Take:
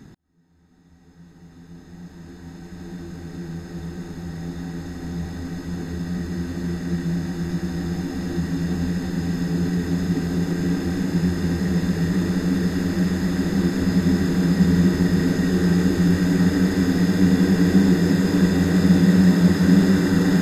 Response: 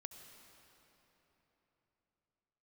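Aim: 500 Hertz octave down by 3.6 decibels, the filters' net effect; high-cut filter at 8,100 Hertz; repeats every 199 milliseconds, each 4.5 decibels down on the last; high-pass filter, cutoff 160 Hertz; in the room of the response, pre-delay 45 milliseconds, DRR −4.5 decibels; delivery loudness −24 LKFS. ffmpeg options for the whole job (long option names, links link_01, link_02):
-filter_complex "[0:a]highpass=160,lowpass=8100,equalizer=frequency=500:width_type=o:gain=-5,aecho=1:1:199|398|597|796|995|1194|1393|1592|1791:0.596|0.357|0.214|0.129|0.0772|0.0463|0.0278|0.0167|0.01,asplit=2[link_01][link_02];[1:a]atrim=start_sample=2205,adelay=45[link_03];[link_02][link_03]afir=irnorm=-1:irlink=0,volume=9.5dB[link_04];[link_01][link_04]amix=inputs=2:normalize=0,volume=-8.5dB"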